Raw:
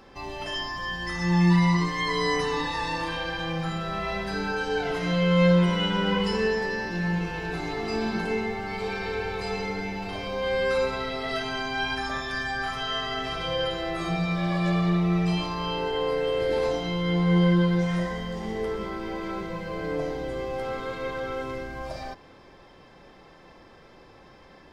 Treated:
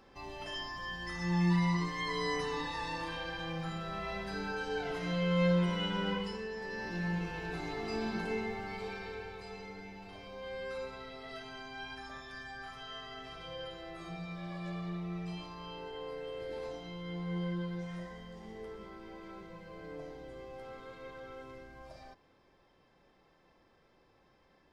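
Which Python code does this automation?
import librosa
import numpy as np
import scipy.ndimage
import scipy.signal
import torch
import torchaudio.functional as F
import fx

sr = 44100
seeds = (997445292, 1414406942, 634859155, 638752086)

y = fx.gain(x, sr, db=fx.line((6.09, -9.0), (6.47, -17.0), (6.88, -8.0), (8.62, -8.0), (9.47, -16.0)))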